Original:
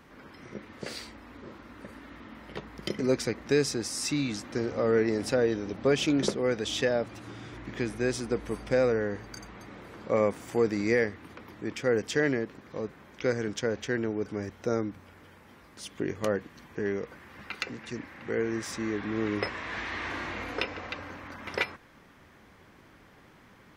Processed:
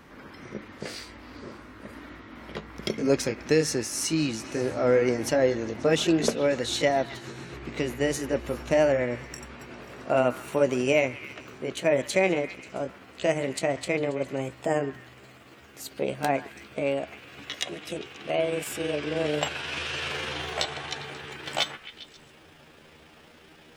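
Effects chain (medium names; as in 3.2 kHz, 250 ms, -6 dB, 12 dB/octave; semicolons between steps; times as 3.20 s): pitch bend over the whole clip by +8 st starting unshifted; repeats whose band climbs or falls 134 ms, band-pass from 1.4 kHz, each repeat 0.7 oct, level -10.5 dB; trim +4 dB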